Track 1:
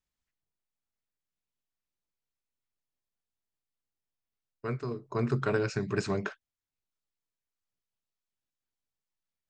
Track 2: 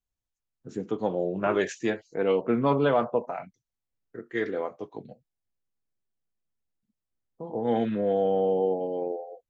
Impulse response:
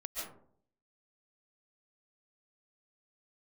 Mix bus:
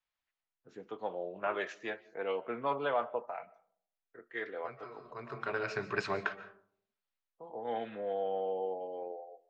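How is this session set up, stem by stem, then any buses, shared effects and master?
+2.0 dB, 0.00 s, send -12 dB, auto duck -16 dB, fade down 0.25 s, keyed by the second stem
-5.5 dB, 0.00 s, send -22 dB, none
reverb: on, RT60 0.60 s, pre-delay 100 ms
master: three-band isolator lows -16 dB, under 520 Hz, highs -21 dB, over 4.4 kHz

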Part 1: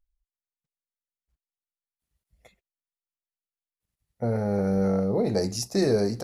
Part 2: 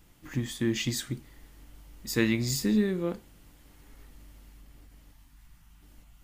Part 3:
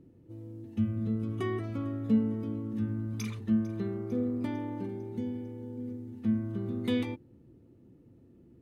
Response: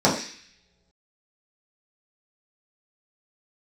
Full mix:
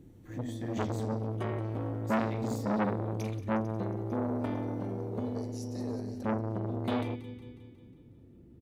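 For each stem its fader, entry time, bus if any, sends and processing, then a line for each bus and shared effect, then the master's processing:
-15.5 dB, 0.00 s, send -22.5 dB, echo send -10 dB, compression 4:1, threshold -26 dBFS, peak gain reduction 7.5 dB; high-pass 270 Hz 24 dB/octave
-14.0 dB, 0.00 s, send -16.5 dB, no echo send, none
+0.5 dB, 0.00 s, no send, echo send -16 dB, none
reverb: on, pre-delay 3 ms
echo: feedback delay 181 ms, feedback 57%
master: bass shelf 93 Hz +8.5 dB; transformer saturation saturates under 1.1 kHz

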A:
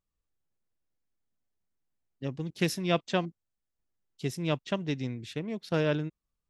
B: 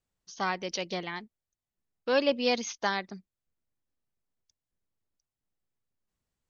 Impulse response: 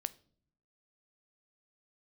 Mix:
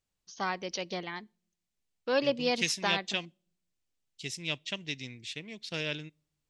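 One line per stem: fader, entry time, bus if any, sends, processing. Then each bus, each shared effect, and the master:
-12.5 dB, 0.00 s, send -13.5 dB, high-order bell 4.2 kHz +16 dB 2.5 oct
-4.0 dB, 0.00 s, send -12 dB, none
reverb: on, pre-delay 11 ms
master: none

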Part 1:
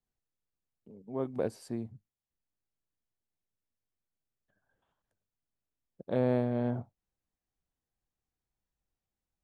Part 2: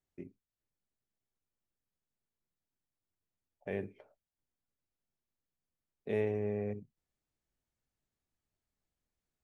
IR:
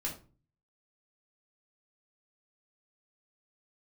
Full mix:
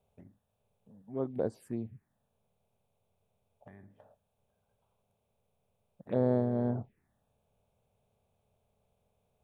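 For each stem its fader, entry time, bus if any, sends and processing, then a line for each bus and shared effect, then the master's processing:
+0.5 dB, 0.00 s, no send, none
-3.0 dB, 0.00 s, no send, spectral levelling over time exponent 0.6; compression 8:1, threshold -40 dBFS, peak gain reduction 13 dB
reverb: none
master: peaking EQ 5.5 kHz -7.5 dB 1.2 oct; touch-sensitive phaser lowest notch 310 Hz, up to 2.6 kHz, full sweep at -28.5 dBFS

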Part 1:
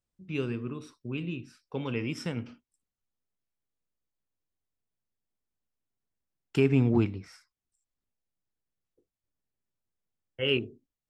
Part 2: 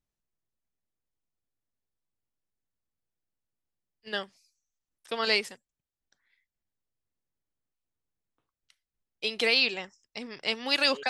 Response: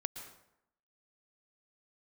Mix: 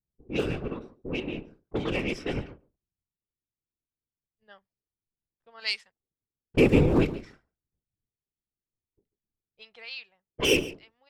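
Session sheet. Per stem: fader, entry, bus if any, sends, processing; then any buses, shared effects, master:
+3.0 dB, 0.00 s, no send, echo send -17.5 dB, comb filter that takes the minimum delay 2.6 ms; whisper effect
-1.5 dB, 0.35 s, no send, no echo send, amplifier tone stack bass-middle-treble 10-0-10; auto duck -16 dB, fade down 0.75 s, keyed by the first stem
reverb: none
echo: delay 141 ms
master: level-controlled noise filter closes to 320 Hz, open at -23.5 dBFS; treble shelf 6.6 kHz +11.5 dB

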